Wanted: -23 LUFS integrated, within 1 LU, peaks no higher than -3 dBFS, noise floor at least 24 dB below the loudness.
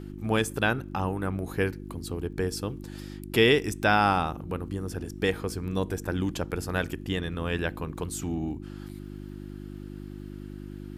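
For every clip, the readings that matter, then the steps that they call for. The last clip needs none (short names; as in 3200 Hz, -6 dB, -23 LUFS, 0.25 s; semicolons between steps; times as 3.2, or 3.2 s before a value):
ticks 18/s; hum 50 Hz; harmonics up to 350 Hz; hum level -37 dBFS; loudness -28.5 LUFS; peak -7.5 dBFS; loudness target -23.0 LUFS
-> de-click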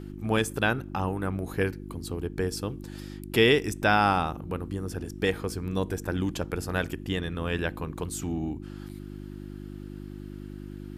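ticks 0/s; hum 50 Hz; harmonics up to 350 Hz; hum level -37 dBFS
-> de-hum 50 Hz, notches 7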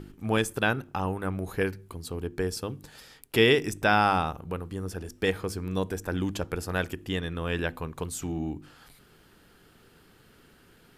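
hum none; loudness -29.0 LUFS; peak -7.5 dBFS; loudness target -23.0 LUFS
-> gain +6 dB; limiter -3 dBFS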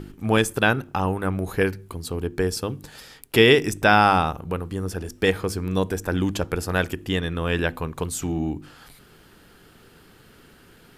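loudness -23.0 LUFS; peak -3.0 dBFS; noise floor -52 dBFS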